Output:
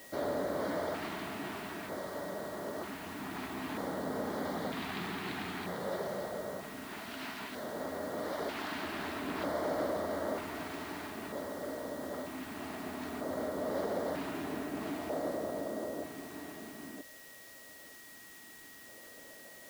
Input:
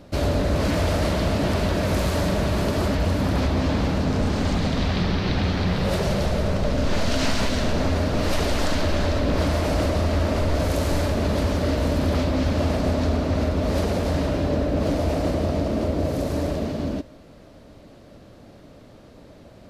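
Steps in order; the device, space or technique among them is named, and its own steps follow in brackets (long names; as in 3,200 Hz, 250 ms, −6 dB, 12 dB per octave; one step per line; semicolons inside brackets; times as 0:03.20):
shortwave radio (band-pass filter 330–2,900 Hz; amplitude tremolo 0.21 Hz, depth 50%; auto-filter notch square 0.53 Hz 540–2,600 Hz; steady tone 1,900 Hz −48 dBFS; white noise bed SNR 16 dB)
level −7 dB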